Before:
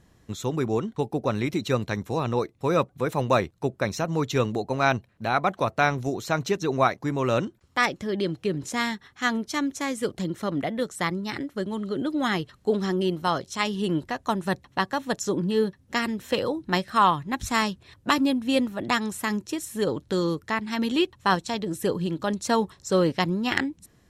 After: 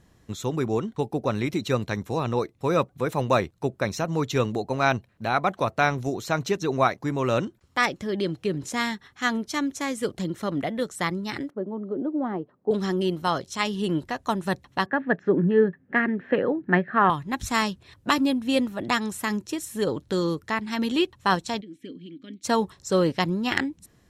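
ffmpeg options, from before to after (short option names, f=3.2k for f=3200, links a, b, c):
-filter_complex "[0:a]asettb=1/sr,asplit=3[a][b][c];[a]atrim=end=11.504[d];[b]atrim=start=11.5:end=12.71,asetpts=PTS-STARTPTS,afade=t=in:d=0.004:c=qsin,afade=t=out:st=1.206:d=0.004:c=qsin,asuperpass=centerf=420:order=4:qfactor=0.65[e];[c]atrim=start=12.706[f];[d][e]acrossfade=d=0.004:c1=hsin:c2=qsin[g];[g][f]acrossfade=d=0.004:c1=qsin:c2=hsin,asettb=1/sr,asplit=3[h][i][j];[h]atrim=end=14.864[k];[i]atrim=start=14.86:end=17.1,asetpts=PTS-STARTPTS,afade=t=in:d=0.004:c=qsin,afade=t=out:st=2.236:d=0.004:c=qsin,highpass=160,equalizer=f=170:t=q:w=4:g=8,equalizer=f=260:t=q:w=4:g=5,equalizer=f=400:t=q:w=4:g=6,equalizer=f=670:t=q:w=4:g=3,equalizer=f=1k:t=q:w=4:g=-5,equalizer=f=1.7k:t=q:w=4:g=10,lowpass=f=2.2k:w=0.5412,lowpass=f=2.2k:w=1.3066[l];[j]atrim=start=17.096[m];[k][l]acrossfade=d=0.004:c1=hsin:c2=qsin[n];[n][m]acrossfade=d=0.004:c1=qsin:c2=hsin,asplit=3[o][p][q];[o]afade=t=out:st=21.6:d=0.02[r];[p]asplit=3[s][t][u];[s]bandpass=f=270:t=q:w=8,volume=0dB[v];[t]bandpass=f=2.29k:t=q:w=8,volume=-6dB[w];[u]bandpass=f=3.01k:t=q:w=8,volume=-9dB[x];[v][w][x]amix=inputs=3:normalize=0,afade=t=in:st=21.6:d=0.02,afade=t=out:st=22.43:d=0.02[y];[q]afade=t=in:st=22.43:d=0.02[z];[r][y][z]amix=inputs=3:normalize=0"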